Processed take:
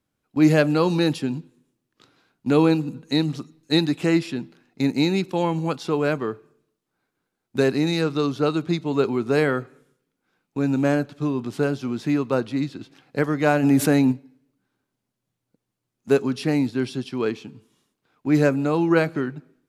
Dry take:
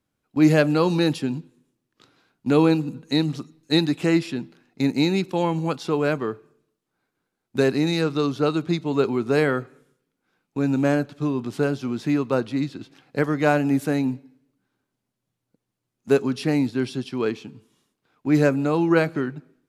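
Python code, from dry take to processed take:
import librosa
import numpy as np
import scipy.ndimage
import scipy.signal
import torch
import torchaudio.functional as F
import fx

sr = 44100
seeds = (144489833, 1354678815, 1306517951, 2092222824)

y = fx.env_flatten(x, sr, amount_pct=50, at=(13.62, 14.11), fade=0.02)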